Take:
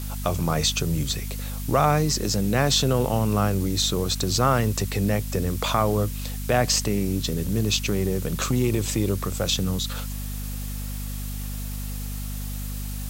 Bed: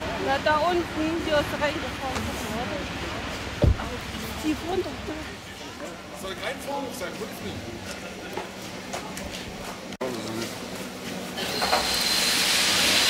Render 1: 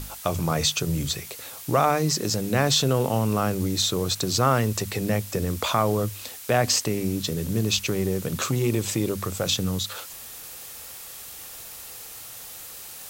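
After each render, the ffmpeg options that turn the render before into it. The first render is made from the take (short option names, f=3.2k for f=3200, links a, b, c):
-af "bandreject=f=50:t=h:w=6,bandreject=f=100:t=h:w=6,bandreject=f=150:t=h:w=6,bandreject=f=200:t=h:w=6,bandreject=f=250:t=h:w=6"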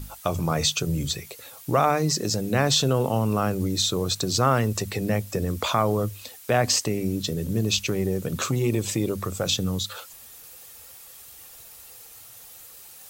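-af "afftdn=nr=8:nf=-41"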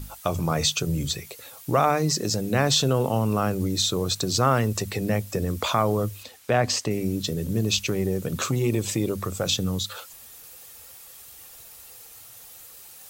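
-filter_complex "[0:a]asettb=1/sr,asplit=3[a][b][c];[a]atrim=end=6.234[d];[b]atrim=start=6.23:end=6.91,asetpts=PTS-STARTPTS,afade=t=in:d=0.004:c=qsin,afade=t=out:st=0.676:d=0.004:c=qsin,highshelf=f=7.7k:g=-11[e];[c]atrim=start=6.906[f];[d][e]acrossfade=d=0.004:c1=hsin:c2=qsin[g];[g][f]acrossfade=d=0.004:c1=qsin:c2=hsin"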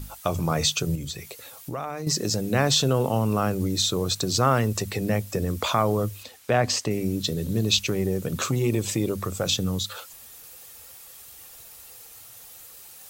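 -filter_complex "[0:a]asettb=1/sr,asplit=3[a][b][c];[a]atrim=end=0.954[d];[b]atrim=start=0.95:end=2.07,asetpts=PTS-STARTPTS,afade=t=in:d=0.004:c=qsin,afade=t=out:st=1.116:d=0.004:c=qsin,acompressor=threshold=-31dB:ratio=3:attack=3.2:release=140:knee=1:detection=peak[e];[c]atrim=start=2.066[f];[d][e]acrossfade=d=0.004:c1=hsin:c2=qsin[g];[g][f]acrossfade=d=0.004:c1=qsin:c2=hsin,asettb=1/sr,asplit=3[h][i][j];[h]atrim=end=7.254[k];[i]atrim=start=7.25:end=7.79,asetpts=PTS-STARTPTS,afade=t=in:d=0.004:c=qsin,afade=t=out:st=0.536:d=0.004:c=qsin,equalizer=f=3.9k:w=4.8:g=7[l];[j]atrim=start=7.786[m];[k][l]acrossfade=d=0.004:c1=hsin:c2=qsin[n];[n][m]acrossfade=d=0.004:c1=qsin:c2=hsin"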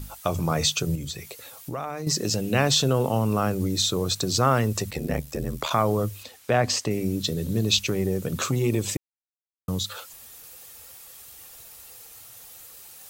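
-filter_complex "[0:a]asettb=1/sr,asplit=3[a][b][c];[a]atrim=end=2.264[d];[b]atrim=start=2.26:end=2.68,asetpts=PTS-STARTPTS,afade=t=in:d=0.004:c=qsin,afade=t=out:st=0.416:d=0.004:c=qsin,equalizer=f=2.8k:w=5.7:g=11[e];[c]atrim=start=2.676[f];[d][e]acrossfade=d=0.004:c1=hsin:c2=qsin[g];[g][f]acrossfade=d=0.004:c1=qsin:c2=hsin,asplit=3[h][i][j];[h]afade=t=out:st=4.9:d=0.02[k];[i]aeval=exprs='val(0)*sin(2*PI*38*n/s)':c=same,afade=t=in:st=4.9:d=0.02,afade=t=out:st=5.69:d=0.02[l];[j]afade=t=in:st=5.69:d=0.02[m];[k][l][m]amix=inputs=3:normalize=0,asplit=3[n][o][p];[n]atrim=end=8.97,asetpts=PTS-STARTPTS,afade=t=out:st=8.966:d=0.004:c=hsin[q];[o]atrim=start=8.97:end=9.68,asetpts=PTS-STARTPTS,volume=0[r];[p]atrim=start=9.68,asetpts=PTS-STARTPTS,afade=t=in:d=0.004:c=hsin[s];[q][r][s]concat=n=3:v=0:a=1"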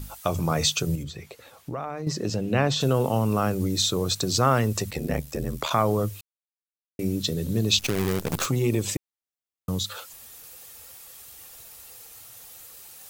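-filter_complex "[0:a]asplit=3[a][b][c];[a]afade=t=out:st=1.02:d=0.02[d];[b]lowpass=f=2.1k:p=1,afade=t=in:st=1.02:d=0.02,afade=t=out:st=2.8:d=0.02[e];[c]afade=t=in:st=2.8:d=0.02[f];[d][e][f]amix=inputs=3:normalize=0,asettb=1/sr,asplit=3[g][h][i];[g]atrim=end=7.794[j];[h]atrim=start=7.79:end=8.46,asetpts=PTS-STARTPTS,afade=t=in:d=0.004:c=qsin,afade=t=out:st=0.666:d=0.004:c=qsin,acrusher=bits=5:dc=4:mix=0:aa=0.000001[k];[i]atrim=start=8.456[l];[j][k]acrossfade=d=0.004:c1=hsin:c2=qsin[m];[m][l]acrossfade=d=0.004:c1=qsin:c2=hsin,asplit=3[n][o][p];[n]atrim=end=6.21,asetpts=PTS-STARTPTS,afade=t=out:st=6.206:d=0.004:c=hsin[q];[o]atrim=start=6.21:end=6.99,asetpts=PTS-STARTPTS,volume=0[r];[p]atrim=start=6.99,asetpts=PTS-STARTPTS,afade=t=in:d=0.004:c=hsin[s];[q][r][s]concat=n=3:v=0:a=1"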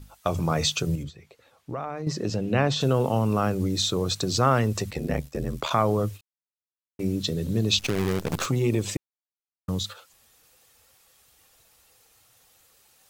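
-af "agate=range=-9dB:threshold=-34dB:ratio=16:detection=peak,highshelf=f=9k:g=-10.5"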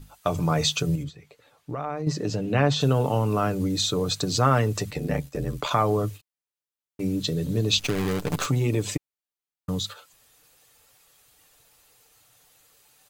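-af "bandreject=f=5.5k:w=22,aecho=1:1:6.8:0.41"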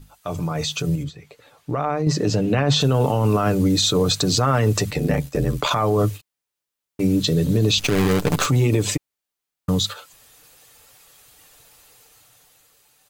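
-af "alimiter=limit=-17.5dB:level=0:latency=1:release=23,dynaudnorm=f=240:g=9:m=8dB"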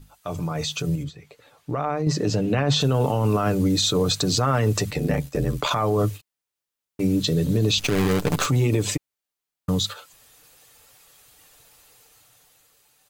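-af "volume=-2.5dB"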